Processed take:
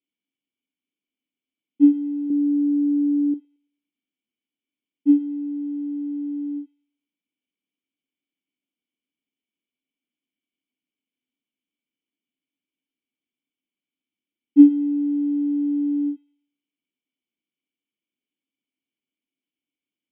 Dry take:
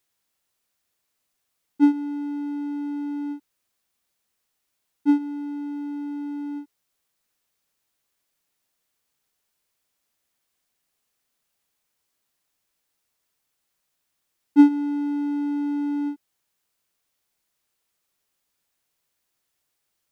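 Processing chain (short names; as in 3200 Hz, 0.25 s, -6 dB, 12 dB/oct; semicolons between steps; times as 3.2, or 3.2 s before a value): vocal tract filter i; 2.3–3.34 low shelf 420 Hz +9 dB; HPF 210 Hz; thin delay 0.111 s, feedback 38%, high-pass 1800 Hz, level -8 dB; gain +6 dB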